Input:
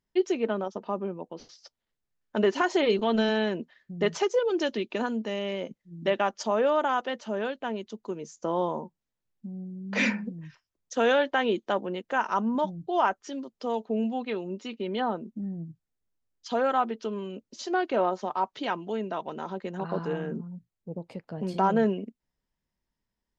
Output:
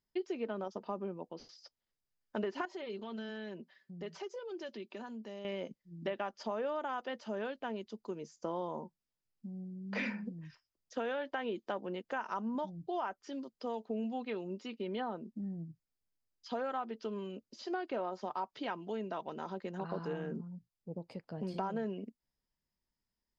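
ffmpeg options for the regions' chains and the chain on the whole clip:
ffmpeg -i in.wav -filter_complex "[0:a]asettb=1/sr,asplit=3[link_01][link_02][link_03];[link_01]atrim=end=2.654[link_04];[link_02]atrim=start=2.65:end=5.45,asetpts=PTS-STARTPTS,afade=type=in:duration=0.004:curve=qsin,afade=type=out:start_time=2.796:duration=0.004:curve=qsin,highpass=110,aecho=1:1:5.2:0.43,atrim=end_sample=123480,acompressor=threshold=-44dB:ratio=2:attack=3.2:release=140:knee=1:detection=peak[link_05];[link_03]atrim=start=5.446[link_06];[link_04][link_05]acrossfade=duration=0.004:curve1=hsin:curve2=qsin[link_07];[link_07][link_06]acrossfade=duration=0.004:curve1=qsin:curve2=hsin,acrossover=split=3500[link_08][link_09];[link_09]acompressor=threshold=-54dB:ratio=4:attack=1:release=60[link_10];[link_08][link_10]amix=inputs=2:normalize=0,equalizer=frequency=4900:width=6.6:gain=9,acompressor=threshold=-27dB:ratio=6,volume=-6dB" out.wav

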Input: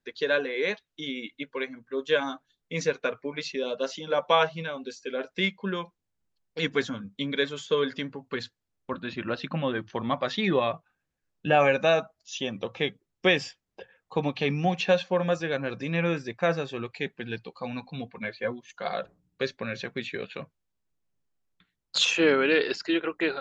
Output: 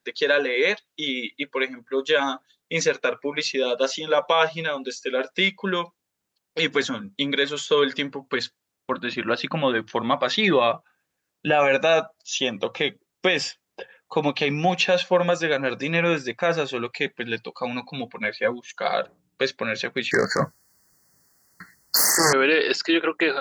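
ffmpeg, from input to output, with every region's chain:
ffmpeg -i in.wav -filter_complex "[0:a]asettb=1/sr,asplit=3[link_01][link_02][link_03];[link_01]atrim=end=20.114[link_04];[link_02]atrim=start=20.11:end=22.33,asetpts=PTS-STARTPTS,afade=type=in:duration=0.004:curve=qsin,afade=type=out:start_time=2.216:duration=0.004:curve=qsin,equalizer=frequency=470:width=0.45:gain=-8.5,aeval=exprs='0.299*sin(PI/2*7.08*val(0)/0.299)':channel_layout=same,asuperstop=centerf=3000:order=20:qfactor=1.3[link_05];[link_03]atrim=start=22.326[link_06];[link_04][link_05]acrossfade=duration=0.004:curve1=hsin:curve2=qsin[link_07];[link_07][link_06]acrossfade=duration=0.004:curve1=qsin:curve2=hsin,highpass=frequency=330:poles=1,highshelf=frequency=6800:gain=4,alimiter=level_in=16.5dB:limit=-1dB:release=50:level=0:latency=1,volume=-8dB" out.wav

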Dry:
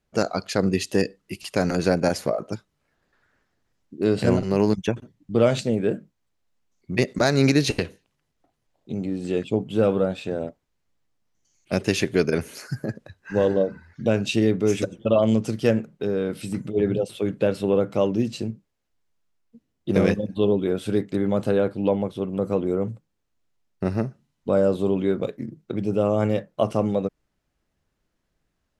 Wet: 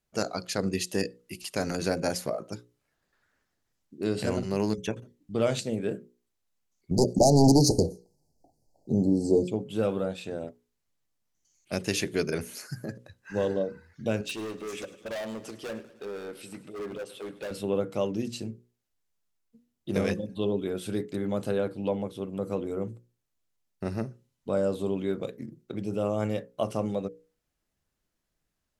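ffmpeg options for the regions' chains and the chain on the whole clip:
ffmpeg -i in.wav -filter_complex "[0:a]asettb=1/sr,asplit=3[link_01][link_02][link_03];[link_01]atrim=end=6.914[link_04];[link_02]atrim=start=6.91:end=9.48,asetpts=PTS-STARTPTS,afade=type=in:duration=0.004:curve=qsin,afade=type=out:start_time=2.566:duration=0.004:curve=qsin,highshelf=frequency=5600:gain=-10.5,aeval=exprs='0.531*sin(PI/2*2.51*val(0)/0.531)':channel_layout=same,asuperstop=centerf=2000:order=20:qfactor=0.56[link_05];[link_03]atrim=start=9.476[link_06];[link_04][link_05]acrossfade=duration=0.004:curve1=hsin:curve2=qsin[link_07];[link_07][link_06]acrossfade=duration=0.004:curve1=qsin:curve2=hsin,asettb=1/sr,asplit=3[link_08][link_09][link_10];[link_08]atrim=end=14.214[link_11];[link_09]atrim=start=14.21:end=17.51,asetpts=PTS-STARTPTS,afade=type=in:duration=0.004:curve=qsin,afade=type=out:start_time=3.296:duration=0.004:curve=qsin,bass=frequency=250:gain=-14,treble=frequency=4000:gain=-7,asoftclip=type=hard:threshold=-25.5dB,aecho=1:1:102|204|306|408|510|612:0.15|0.0883|0.0521|0.0307|0.0181|0.0107,atrim=end_sample=145530[link_12];[link_10]atrim=start=17.506[link_13];[link_11][link_12]acrossfade=duration=0.004:curve1=hsin:curve2=qsin[link_14];[link_14][link_13]acrossfade=duration=0.004:curve1=qsin:curve2=hsin,aemphasis=mode=production:type=cd,bandreject=frequency=60:width_type=h:width=6,bandreject=frequency=120:width_type=h:width=6,bandreject=frequency=180:width_type=h:width=6,bandreject=frequency=240:width_type=h:width=6,bandreject=frequency=300:width_type=h:width=6,bandreject=frequency=360:width_type=h:width=6,bandreject=frequency=420:width_type=h:width=6,bandreject=frequency=480:width_type=h:width=6,bandreject=frequency=540:width_type=h:width=6,volume=-6.5dB" out.wav

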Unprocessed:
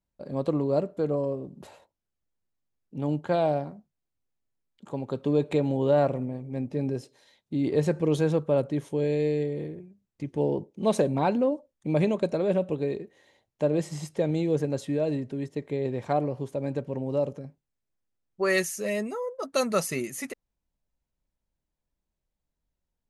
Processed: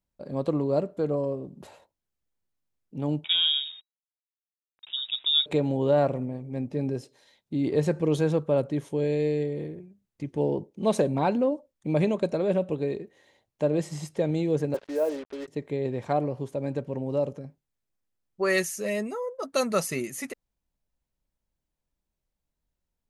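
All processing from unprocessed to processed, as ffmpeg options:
ffmpeg -i in.wav -filter_complex "[0:a]asettb=1/sr,asplit=3[link_01][link_02][link_03];[link_01]atrim=end=3.244[link_04];[link_02]atrim=start=3.24:end=5.46,asetpts=PTS-STARTPTS,afade=type=in:duration=0.004:curve=qsin,afade=type=out:start_time=2.216:duration=0.004:curve=qsin,aeval=exprs='val(0)*gte(abs(val(0)),0.00266)':channel_layout=same,lowpass=frequency=3300:width_type=q:width=0.5098,lowpass=frequency=3300:width_type=q:width=0.6013,lowpass=frequency=3300:width_type=q:width=0.9,lowpass=frequency=3300:width_type=q:width=2.563,afreqshift=-3900[link_05];[link_03]atrim=start=5.456[link_06];[link_04][link_05]acrossfade=duration=0.004:curve1=hsin:curve2=qsin[link_07];[link_07][link_06]acrossfade=duration=0.004:curve1=qsin:curve2=hsin,asettb=1/sr,asplit=3[link_08][link_09][link_10];[link_08]atrim=end=14.744[link_11];[link_09]atrim=start=14.74:end=15.48,asetpts=PTS-STARTPTS,afade=type=in:duration=0.004:curve=qsin,afade=type=out:start_time=0.736:duration=0.004:curve=qsin,highpass=frequency=330:width=0.5412,highpass=frequency=330:width=1.3066,equalizer=frequency=540:width_type=q:width=4:gain=4,equalizer=frequency=940:width_type=q:width=4:gain=6,equalizer=frequency=1400:width_type=q:width=4:gain=5,lowpass=frequency=2200:width=0.5412,lowpass=frequency=2200:width=1.3066,acrusher=bits=6:mix=0:aa=0.5[link_12];[link_10]atrim=start=15.476[link_13];[link_11][link_12]acrossfade=duration=0.004:curve1=hsin:curve2=qsin[link_14];[link_14][link_13]acrossfade=duration=0.004:curve1=qsin:curve2=hsin" out.wav

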